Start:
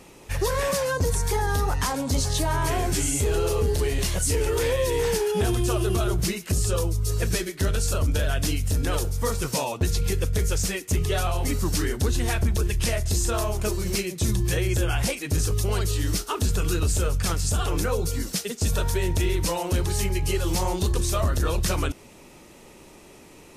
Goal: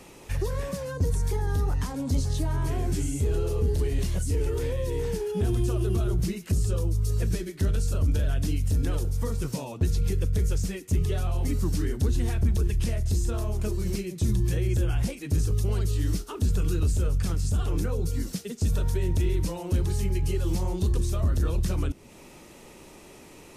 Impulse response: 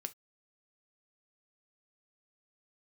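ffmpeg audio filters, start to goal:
-filter_complex "[0:a]acrossover=split=360[link_01][link_02];[link_02]acompressor=threshold=-44dB:ratio=2.5[link_03];[link_01][link_03]amix=inputs=2:normalize=0"

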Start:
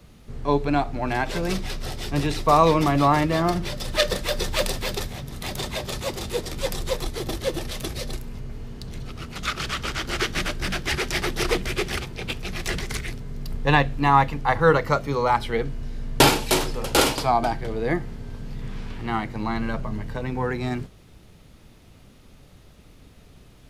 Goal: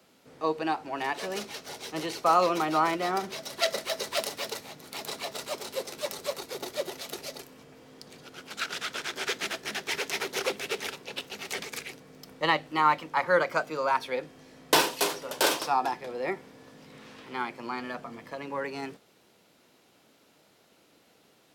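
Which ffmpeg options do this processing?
ffmpeg -i in.wav -af "highpass=310,asetrate=48510,aresample=44100,volume=-5dB" out.wav

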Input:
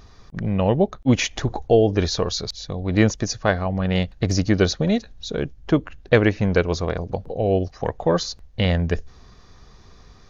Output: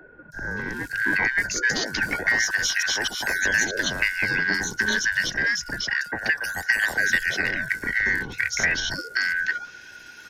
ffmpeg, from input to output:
ffmpeg -i in.wav -filter_complex "[0:a]afftfilt=real='real(if(lt(b,272),68*(eq(floor(b/68),0)*1+eq(floor(b/68),1)*0+eq(floor(b/68),2)*3+eq(floor(b/68),3)*2)+mod(b,68),b),0)':imag='imag(if(lt(b,272),68*(eq(floor(b/68),0)*1+eq(floor(b/68),1)*0+eq(floor(b/68),2)*3+eq(floor(b/68),3)*2)+mod(b,68),b),0)':win_size=2048:overlap=0.75,highpass=82,bass=frequency=250:gain=1,treble=frequency=4000:gain=10,acrossover=split=120|440[link_01][link_02][link_03];[link_01]acompressor=threshold=-54dB:ratio=4[link_04];[link_02]acompressor=threshold=-50dB:ratio=4[link_05];[link_03]acompressor=threshold=-22dB:ratio=4[link_06];[link_04][link_05][link_06]amix=inputs=3:normalize=0,asplit=2[link_07][link_08];[link_08]acrusher=samples=37:mix=1:aa=0.000001:lfo=1:lforange=59.2:lforate=0.27,volume=-10dB[link_09];[link_07][link_09]amix=inputs=2:normalize=0,aresample=32000,aresample=44100,acrossover=split=250[link_10][link_11];[link_10]asoftclip=type=tanh:threshold=-39.5dB[link_12];[link_12][link_11]amix=inputs=2:normalize=0,acrossover=split=1300|5400[link_13][link_14][link_15];[link_15]adelay=320[link_16];[link_14]adelay=570[link_17];[link_13][link_17][link_16]amix=inputs=3:normalize=0,afreqshift=-35,volume=3.5dB" out.wav

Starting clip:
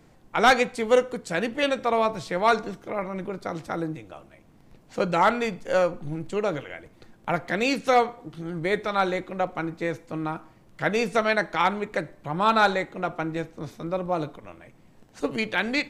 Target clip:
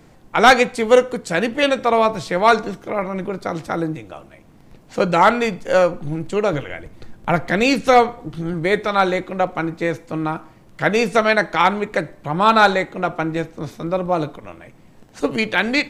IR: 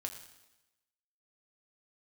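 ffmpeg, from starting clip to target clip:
-filter_complex "[0:a]asettb=1/sr,asplit=3[link_01][link_02][link_03];[link_01]atrim=end=6.534[link_04];[link_02]atrim=start=6.53:end=8.54,asetpts=PTS-STARTPTS,afade=type=in:duration=0.004:curve=qsin,afade=type=out:start_time=2.006:duration=0.004:curve=qsin,lowshelf=frequency=110:gain=10.5[link_05];[link_03]atrim=start=8.536[link_06];[link_04][link_05]acrossfade=duration=0.004:curve1=hsin:curve2=qsin[link_07];[link_07][link_06]acrossfade=duration=0.004:curve1=qsin:curve2=hsin,volume=7dB"

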